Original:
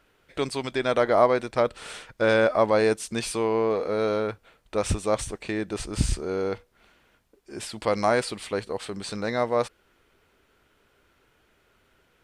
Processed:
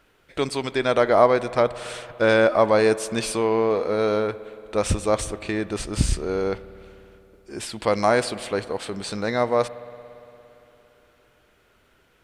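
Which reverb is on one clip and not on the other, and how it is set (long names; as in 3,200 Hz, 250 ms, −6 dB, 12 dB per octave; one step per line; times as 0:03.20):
spring reverb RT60 3.3 s, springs 57 ms, chirp 45 ms, DRR 16 dB
level +3 dB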